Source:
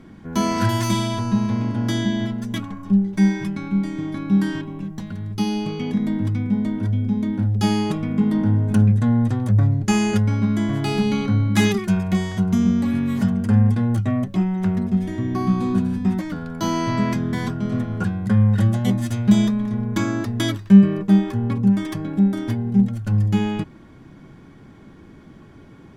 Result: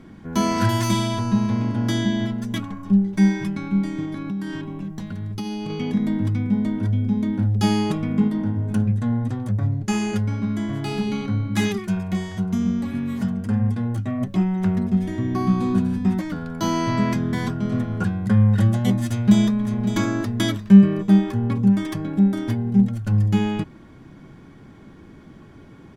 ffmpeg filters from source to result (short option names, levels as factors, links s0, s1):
-filter_complex "[0:a]asettb=1/sr,asplit=3[s0][s1][s2];[s0]atrim=end=4.054[s3];[s1]atrim=start=4.05:end=5.7,asetpts=PTS-STARTPTS,afade=t=in:d=0.004:c=qsin,afade=t=out:st=1.646:d=0.004:c=qsin,acompressor=threshold=0.0562:ratio=6:attack=3.2:release=140:knee=1:detection=peak[s4];[s2]atrim=start=5.696[s5];[s3][s4]acrossfade=d=0.004:c1=hsin:c2=qsin[s6];[s6][s5]acrossfade=d=0.004:c1=qsin:c2=hsin,asplit=3[s7][s8][s9];[s7]afade=t=out:st=8.27:d=0.02[s10];[s8]flanger=delay=3.5:depth=3.1:regen=-82:speed=1.9:shape=triangular,afade=t=in:st=8.27:d=0.02,afade=t=out:st=14.2:d=0.02[s11];[s9]afade=t=in:st=14.2:d=0.02[s12];[s10][s11][s12]amix=inputs=3:normalize=0,asplit=2[s13][s14];[s14]afade=t=in:st=19.08:d=0.01,afade=t=out:st=19.7:d=0.01,aecho=0:1:560|1120|1680|2240:0.354813|0.124185|0.0434646|0.0152126[s15];[s13][s15]amix=inputs=2:normalize=0"